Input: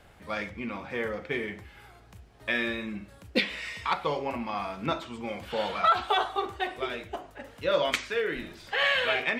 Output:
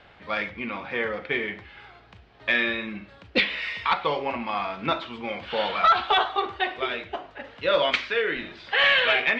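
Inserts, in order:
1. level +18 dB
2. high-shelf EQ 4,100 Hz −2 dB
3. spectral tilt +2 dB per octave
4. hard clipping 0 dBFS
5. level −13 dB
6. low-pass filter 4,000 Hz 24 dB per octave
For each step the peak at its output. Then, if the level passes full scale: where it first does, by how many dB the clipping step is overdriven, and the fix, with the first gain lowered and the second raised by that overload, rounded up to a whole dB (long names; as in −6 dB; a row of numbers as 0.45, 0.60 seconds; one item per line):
+4.0, +4.0, +9.0, 0.0, −13.0, −11.0 dBFS
step 1, 9.0 dB
step 1 +9 dB, step 5 −4 dB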